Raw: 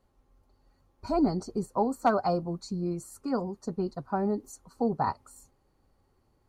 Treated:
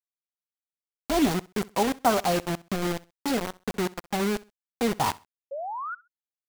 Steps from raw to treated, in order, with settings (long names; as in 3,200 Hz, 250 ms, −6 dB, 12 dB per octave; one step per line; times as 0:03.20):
0:03.16–0:04.91: parametric band 1,200 Hz −12 dB 0.78 octaves
bit reduction 5 bits
0:05.51–0:05.95: sound drawn into the spectrogram rise 530–1,500 Hz −35 dBFS
repeating echo 65 ms, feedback 26%, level −21.5 dB
level +2 dB